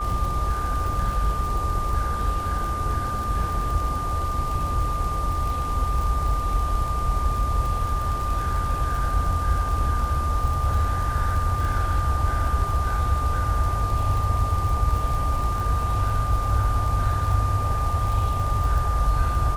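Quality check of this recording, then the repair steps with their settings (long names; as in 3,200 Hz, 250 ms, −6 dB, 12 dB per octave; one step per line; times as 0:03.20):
surface crackle 42 per second −28 dBFS
whistle 1,200 Hz −27 dBFS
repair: click removal
notch filter 1,200 Hz, Q 30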